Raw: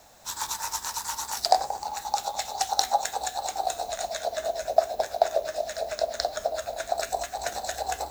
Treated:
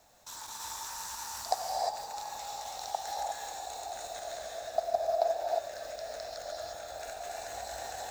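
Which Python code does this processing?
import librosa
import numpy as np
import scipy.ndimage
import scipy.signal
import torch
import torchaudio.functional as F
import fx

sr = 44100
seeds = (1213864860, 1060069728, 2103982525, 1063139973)

y = fx.reverse_delay(x, sr, ms=157, wet_db=-4)
y = fx.level_steps(y, sr, step_db=19)
y = fx.rev_gated(y, sr, seeds[0], gate_ms=380, shape='rising', drr_db=-2.0)
y = y * librosa.db_to_amplitude(-6.5)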